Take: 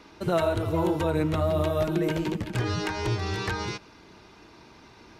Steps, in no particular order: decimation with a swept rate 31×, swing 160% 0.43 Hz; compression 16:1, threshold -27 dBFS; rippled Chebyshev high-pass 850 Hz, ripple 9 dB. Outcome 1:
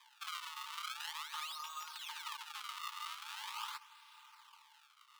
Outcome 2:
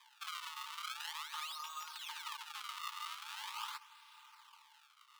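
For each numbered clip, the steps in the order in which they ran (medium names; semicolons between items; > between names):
decimation with a swept rate > compression > rippled Chebyshev high-pass; compression > decimation with a swept rate > rippled Chebyshev high-pass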